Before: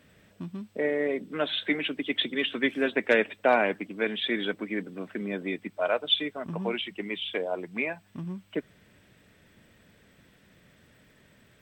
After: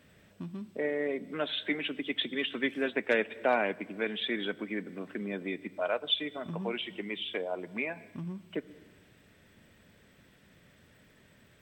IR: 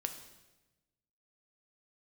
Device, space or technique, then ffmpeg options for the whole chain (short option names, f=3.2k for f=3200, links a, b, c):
ducked reverb: -filter_complex "[0:a]asplit=3[a][b][c];[1:a]atrim=start_sample=2205[d];[b][d]afir=irnorm=-1:irlink=0[e];[c]apad=whole_len=512308[f];[e][f]sidechaincompress=threshold=-37dB:ratio=8:attack=20:release=146,volume=-4dB[g];[a][g]amix=inputs=2:normalize=0,volume=-5.5dB"